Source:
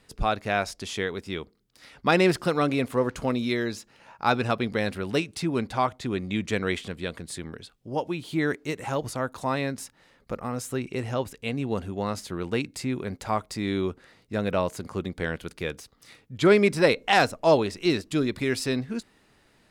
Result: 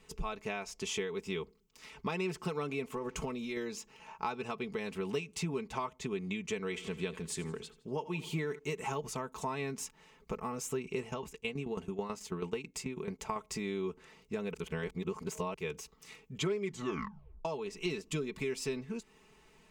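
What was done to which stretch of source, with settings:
0:02.92–0:03.57: downward compressor, threshold −27 dBFS
0:06.59–0:08.59: repeating echo 82 ms, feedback 47%, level −18 dB
0:11.01–0:13.36: shaped tremolo saw down 9.2 Hz, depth 80%
0:14.54–0:15.54: reverse
0:16.61: tape stop 0.84 s
whole clip: comb filter 4.6 ms, depth 68%; downward compressor 12 to 1, threshold −30 dBFS; EQ curve with evenly spaced ripples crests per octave 0.73, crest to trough 8 dB; level −3.5 dB

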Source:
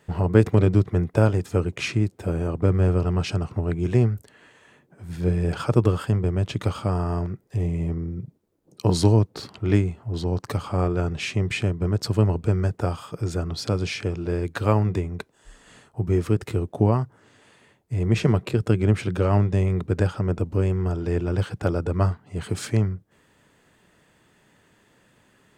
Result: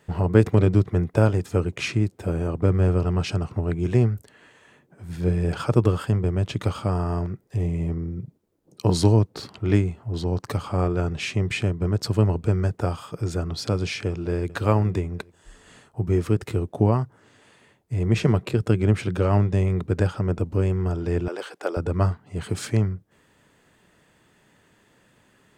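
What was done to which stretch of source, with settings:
0:14.07–0:14.50: delay throw 420 ms, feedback 30%, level −16.5 dB
0:21.28–0:21.77: high-pass filter 370 Hz 24 dB per octave

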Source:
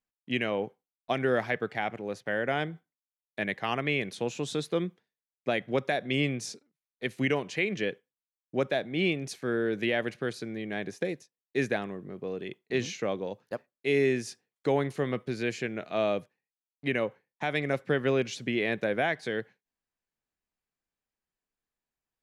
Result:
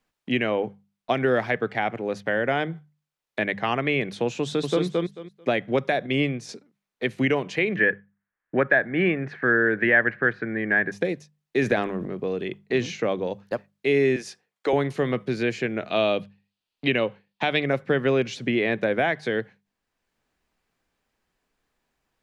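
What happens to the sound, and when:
0:04.41–0:04.84: delay throw 220 ms, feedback 15%, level −2 dB
0:06.06–0:06.49: expander for the loud parts, over −36 dBFS
0:07.76–0:10.92: low-pass with resonance 1,700 Hz, resonance Q 5.8
0:11.62–0:12.15: transient designer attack +4 dB, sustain +9 dB
0:14.16–0:14.73: high-pass filter 440 Hz
0:15.90–0:17.66: flat-topped bell 3,500 Hz +9.5 dB 1.1 octaves
whole clip: high-shelf EQ 6,100 Hz −12 dB; mains-hum notches 50/100/150/200 Hz; multiband upward and downward compressor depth 40%; level +5.5 dB

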